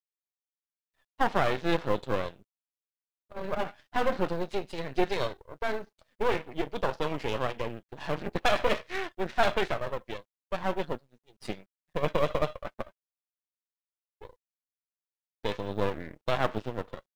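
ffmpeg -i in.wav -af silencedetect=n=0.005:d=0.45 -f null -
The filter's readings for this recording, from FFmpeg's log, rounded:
silence_start: 0.00
silence_end: 1.19 | silence_duration: 1.19
silence_start: 2.41
silence_end: 3.31 | silence_duration: 0.89
silence_start: 12.89
silence_end: 14.22 | silence_duration: 1.32
silence_start: 14.33
silence_end: 15.45 | silence_duration: 1.12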